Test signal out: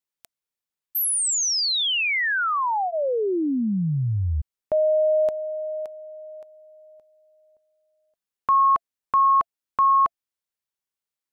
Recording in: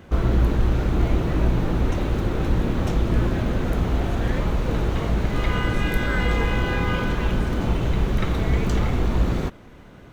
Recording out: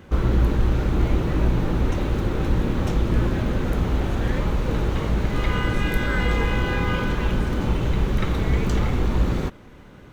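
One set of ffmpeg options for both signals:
ffmpeg -i in.wav -af "bandreject=frequency=680:width=12" out.wav

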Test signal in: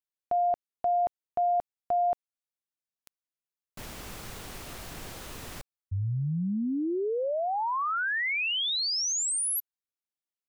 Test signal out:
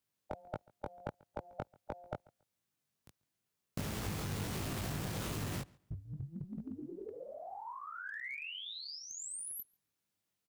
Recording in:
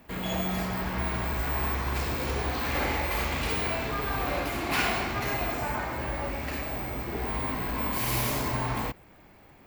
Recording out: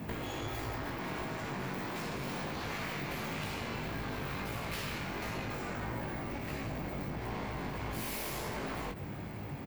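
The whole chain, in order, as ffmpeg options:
ffmpeg -i in.wav -filter_complex "[0:a]highpass=66,afftfilt=real='re*lt(hypot(re,im),0.112)':imag='im*lt(hypot(re,im),0.112)':win_size=1024:overlap=0.75,equalizer=frequency=120:width=0.53:gain=12,acompressor=threshold=-44dB:ratio=10:attack=13:release=90:knee=1:detection=peak,flanger=delay=18.5:depth=2.7:speed=1.5,aeval=exprs='clip(val(0),-1,0.00398)':channel_layout=same,asplit=2[link_01][link_02];[link_02]adelay=139,lowpass=frequency=4800:poles=1,volume=-24dB,asplit=2[link_03][link_04];[link_04]adelay=139,lowpass=frequency=4800:poles=1,volume=0.22[link_05];[link_03][link_05]amix=inputs=2:normalize=0[link_06];[link_01][link_06]amix=inputs=2:normalize=0,volume=11dB" out.wav

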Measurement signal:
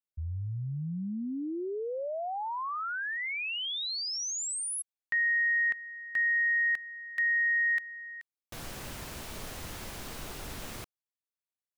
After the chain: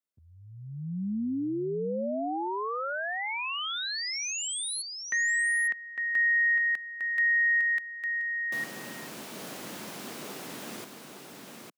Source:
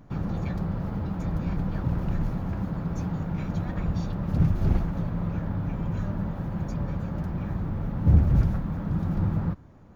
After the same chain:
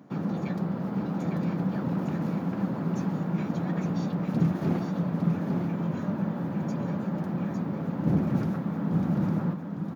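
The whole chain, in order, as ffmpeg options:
ffmpeg -i in.wav -af "highpass=frequency=190:width=0.5412,highpass=frequency=190:width=1.3066,lowshelf=frequency=330:gain=7.5,aecho=1:1:855:0.562" out.wav

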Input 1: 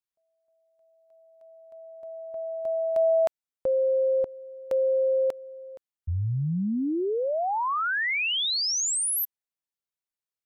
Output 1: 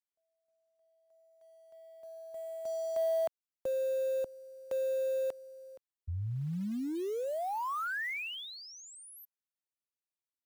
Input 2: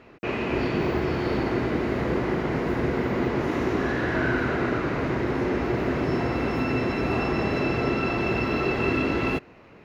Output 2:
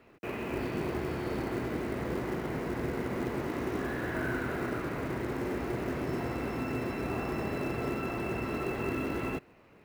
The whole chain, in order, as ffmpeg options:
ffmpeg -i in.wav -filter_complex "[0:a]acrossover=split=180|2600[link_01][link_02][link_03];[link_02]acrusher=bits=5:mode=log:mix=0:aa=0.000001[link_04];[link_03]acompressor=threshold=-45dB:ratio=6:attack=5.4:release=34[link_05];[link_01][link_04][link_05]amix=inputs=3:normalize=0,volume=-8.5dB" out.wav

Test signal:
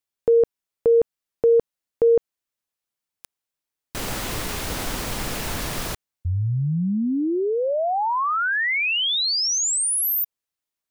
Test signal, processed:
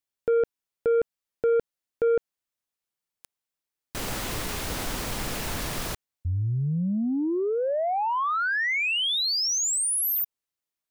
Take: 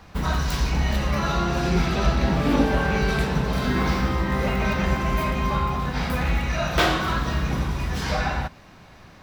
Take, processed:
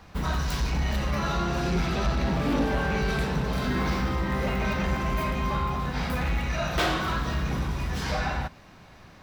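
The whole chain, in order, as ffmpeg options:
ffmpeg -i in.wav -af "asoftclip=type=tanh:threshold=-15.5dB,volume=-2.5dB" out.wav

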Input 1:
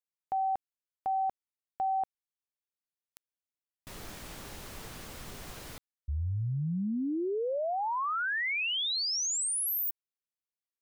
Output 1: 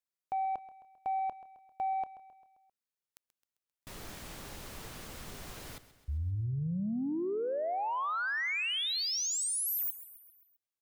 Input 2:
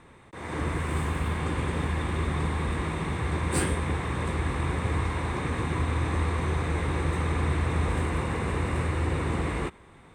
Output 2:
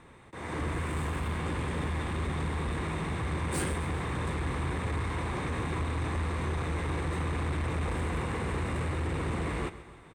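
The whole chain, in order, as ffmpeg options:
ffmpeg -i in.wav -filter_complex "[0:a]asoftclip=type=tanh:threshold=-25dB,asplit=2[link_01][link_02];[link_02]aecho=0:1:132|264|396|528|660:0.168|0.0923|0.0508|0.0279|0.0154[link_03];[link_01][link_03]amix=inputs=2:normalize=0,volume=-1dB" out.wav

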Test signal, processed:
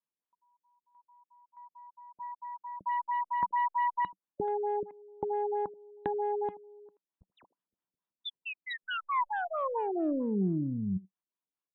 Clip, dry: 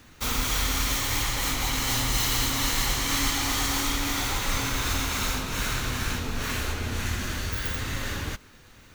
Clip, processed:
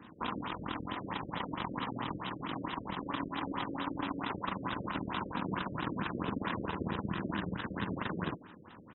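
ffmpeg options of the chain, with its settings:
ffmpeg -i in.wav -filter_complex "[0:a]acompressor=threshold=-33dB:ratio=20,aeval=exprs='0.0596*(cos(1*acos(clip(val(0)/0.0596,-1,1)))-cos(1*PI/2))+0.0015*(cos(3*acos(clip(val(0)/0.0596,-1,1)))-cos(3*PI/2))+0.0299*(cos(4*acos(clip(val(0)/0.0596,-1,1)))-cos(4*PI/2))':channel_layout=same,highpass=130,equalizer=frequency=190:width_type=q:width=4:gain=9,equalizer=frequency=310:width_type=q:width=4:gain=6,equalizer=frequency=1000:width_type=q:width=4:gain=9,equalizer=frequency=2200:width_type=q:width=4:gain=-5,equalizer=frequency=6100:width_type=q:width=4:gain=10,lowpass=frequency=8600:width=0.5412,lowpass=frequency=8600:width=1.3066,asplit=2[link_01][link_02];[link_02]adelay=80,highpass=300,lowpass=3400,asoftclip=type=hard:threshold=-30.5dB,volume=-14dB[link_03];[link_01][link_03]amix=inputs=2:normalize=0,afftfilt=real='re*lt(b*sr/1024,570*pow(4000/570,0.5+0.5*sin(2*PI*4.5*pts/sr)))':imag='im*lt(b*sr/1024,570*pow(4000/570,0.5+0.5*sin(2*PI*4.5*pts/sr)))':win_size=1024:overlap=0.75" out.wav

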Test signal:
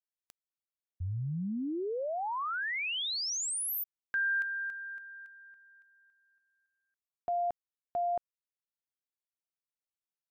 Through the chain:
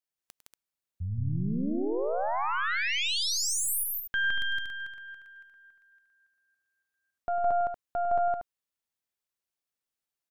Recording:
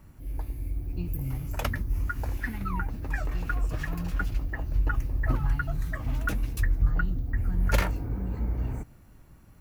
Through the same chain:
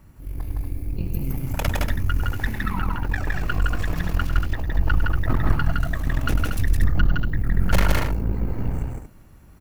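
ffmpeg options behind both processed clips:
ffmpeg -i in.wav -af "aeval=exprs='0.299*(cos(1*acos(clip(val(0)/0.299,-1,1)))-cos(1*PI/2))+0.00668*(cos(3*acos(clip(val(0)/0.299,-1,1)))-cos(3*PI/2))+0.0531*(cos(6*acos(clip(val(0)/0.299,-1,1)))-cos(6*PI/2))':channel_layout=same,aecho=1:1:102|163.3|236.2:0.282|0.794|0.447,volume=2.5dB" out.wav

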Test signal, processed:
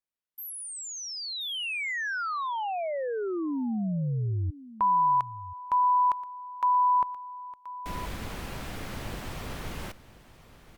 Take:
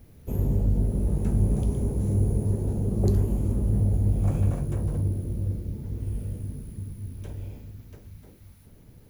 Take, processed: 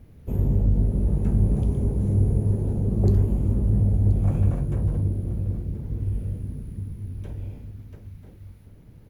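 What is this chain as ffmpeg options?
ffmpeg -i in.wav -af "bass=frequency=250:gain=3,treble=frequency=4000:gain=-8,aecho=1:1:1028:0.15" -ar 48000 -c:a libopus -b:a 96k out.opus

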